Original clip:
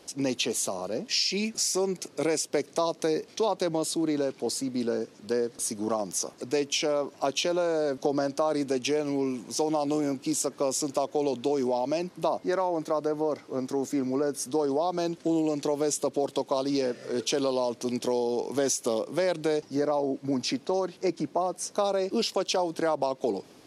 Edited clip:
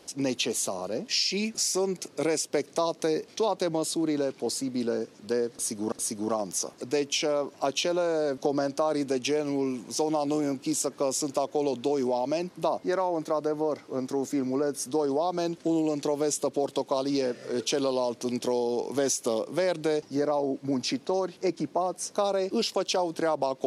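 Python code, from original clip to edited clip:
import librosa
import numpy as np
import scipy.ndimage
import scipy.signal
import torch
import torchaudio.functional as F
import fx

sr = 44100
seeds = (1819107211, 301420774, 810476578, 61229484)

y = fx.edit(x, sr, fx.repeat(start_s=5.52, length_s=0.4, count=2), tone=tone)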